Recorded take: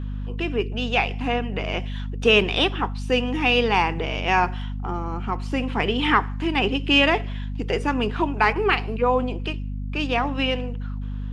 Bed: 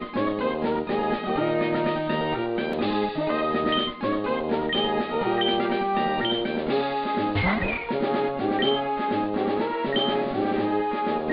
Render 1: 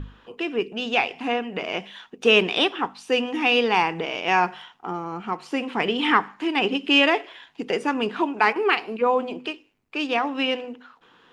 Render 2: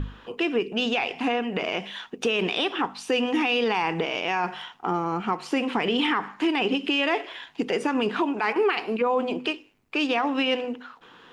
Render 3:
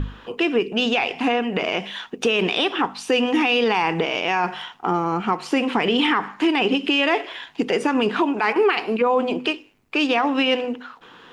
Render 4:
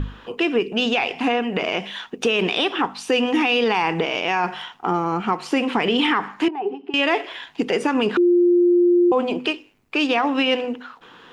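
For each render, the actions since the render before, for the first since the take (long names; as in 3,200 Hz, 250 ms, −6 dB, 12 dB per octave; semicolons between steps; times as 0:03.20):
mains-hum notches 50/100/150/200/250 Hz
in parallel at −2 dB: downward compressor, threshold −27 dBFS, peak gain reduction 14.5 dB; on the sum: brickwall limiter −15 dBFS, peak gain reduction 12 dB
level +4.5 dB
0:06.48–0:06.94: pair of resonant band-passes 560 Hz, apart 0.93 octaves; 0:08.17–0:09.12: beep over 351 Hz −12 dBFS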